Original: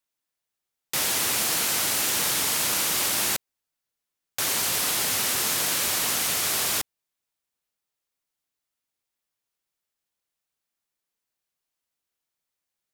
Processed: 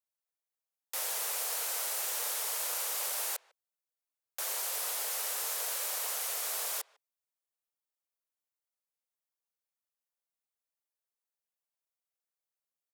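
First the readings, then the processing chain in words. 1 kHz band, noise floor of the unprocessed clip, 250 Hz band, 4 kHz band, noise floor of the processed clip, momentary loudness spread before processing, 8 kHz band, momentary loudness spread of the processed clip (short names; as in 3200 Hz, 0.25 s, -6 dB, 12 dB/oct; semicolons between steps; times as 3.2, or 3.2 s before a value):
-10.0 dB, -85 dBFS, under -30 dB, -13.0 dB, under -85 dBFS, 5 LU, -10.0 dB, 5 LU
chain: steep high-pass 450 Hz 48 dB/oct; bell 3000 Hz -7 dB 2.7 oct; speakerphone echo 0.15 s, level -23 dB; gain -7 dB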